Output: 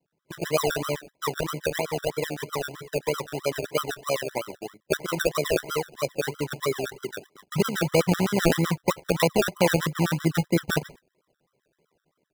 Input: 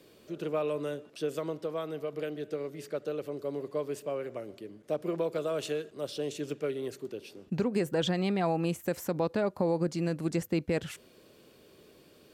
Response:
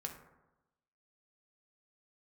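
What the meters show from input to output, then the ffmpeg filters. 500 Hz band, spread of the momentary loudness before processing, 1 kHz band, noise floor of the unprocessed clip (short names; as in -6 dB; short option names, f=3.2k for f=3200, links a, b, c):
+5.0 dB, 10 LU, +8.5 dB, -59 dBFS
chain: -filter_complex "[0:a]lowpass=f=1.3k:w=0.5412,lowpass=f=1.3k:w=1.3066,tremolo=f=72:d=0.462,equalizer=f=150:w=1.9:g=13.5,acrossover=split=390[a][b];[b]dynaudnorm=f=210:g=3:m=12dB[c];[a][c]amix=inputs=2:normalize=0,acrusher=samples=34:mix=1:aa=0.000001:lfo=1:lforange=20.4:lforate=3.1,agate=range=-20dB:threshold=-40dB:ratio=16:detection=peak,afftfilt=real='re*gt(sin(2*PI*7.8*pts/sr)*(1-2*mod(floor(b*sr/1024/1000),2)),0)':imag='im*gt(sin(2*PI*7.8*pts/sr)*(1-2*mod(floor(b*sr/1024/1000),2)),0)':win_size=1024:overlap=0.75,volume=1.5dB"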